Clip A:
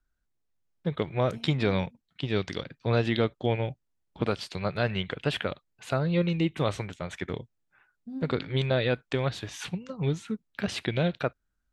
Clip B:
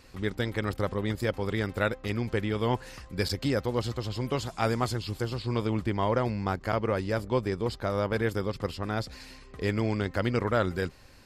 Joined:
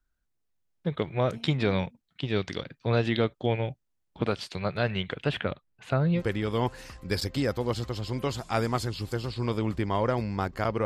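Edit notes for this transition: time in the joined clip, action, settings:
clip A
5.29–6.23 tone controls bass +4 dB, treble -9 dB
6.18 switch to clip B from 2.26 s, crossfade 0.10 s

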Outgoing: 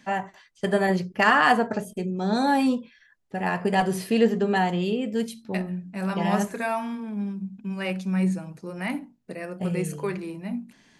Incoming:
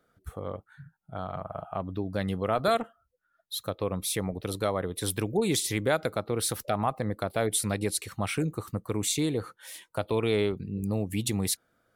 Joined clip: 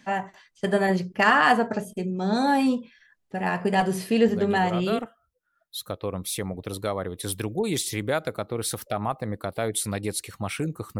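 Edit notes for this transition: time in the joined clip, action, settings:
outgoing
4.28 add incoming from 2.06 s 0.71 s -6 dB
4.99 switch to incoming from 2.77 s

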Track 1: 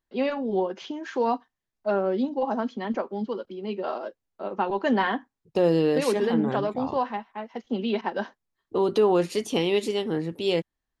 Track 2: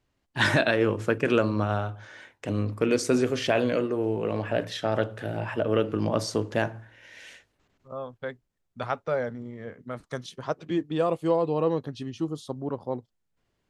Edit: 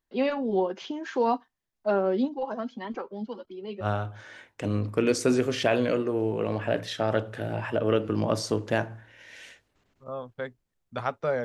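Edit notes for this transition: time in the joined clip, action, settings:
track 1
2.28–3.86 cascading flanger rising 1.7 Hz
3.83 switch to track 2 from 1.67 s, crossfade 0.06 s

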